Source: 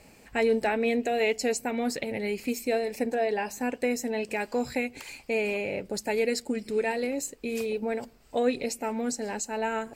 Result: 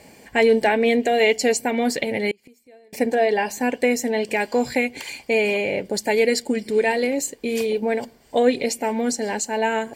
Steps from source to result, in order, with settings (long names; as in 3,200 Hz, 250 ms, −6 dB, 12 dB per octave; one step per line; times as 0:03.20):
notch comb filter 1,300 Hz
0:02.31–0:02.93: gate with flip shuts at −32 dBFS, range −30 dB
dynamic equaliser 3,200 Hz, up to +4 dB, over −49 dBFS, Q 1.1
level +8 dB